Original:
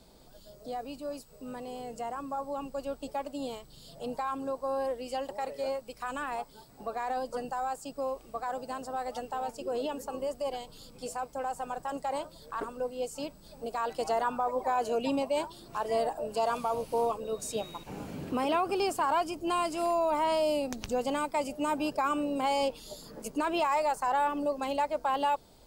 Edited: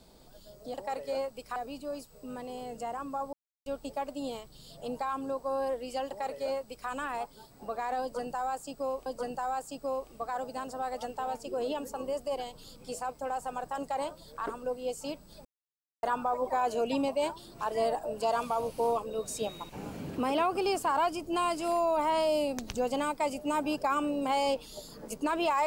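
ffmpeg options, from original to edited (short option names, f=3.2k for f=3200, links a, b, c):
-filter_complex "[0:a]asplit=8[a][b][c][d][e][f][g][h];[a]atrim=end=0.742[i];[b]atrim=start=5.248:end=6.072[j];[c]atrim=start=0.738:end=2.51,asetpts=PTS-STARTPTS,afade=t=out:st=1.768:d=0.004:c=hsin[k];[d]atrim=start=2.51:end=2.84,asetpts=PTS-STARTPTS,volume=0[l];[e]atrim=start=2.84:end=8.242,asetpts=PTS-STARTPTS,afade=t=in:d=0.004:c=hsin[m];[f]atrim=start=7.198:end=13.59,asetpts=PTS-STARTPTS,afade=t=out:st=6.388:d=0.004:c=hsin[n];[g]atrim=start=13.59:end=14.17,asetpts=PTS-STARTPTS,volume=0[o];[h]atrim=start=14.17,asetpts=PTS-STARTPTS,afade=t=in:d=0.004:c=hsin[p];[i][j]acrossfade=d=0.004:c1=hsin:c2=hsin[q];[k][l][m]concat=n=3:v=0:a=1[r];[q][r]acrossfade=d=0.004:c1=hsin:c2=hsin[s];[n][o][p]concat=n=3:v=0:a=1[t];[s][t]acrossfade=d=0.004:c1=hsin:c2=hsin"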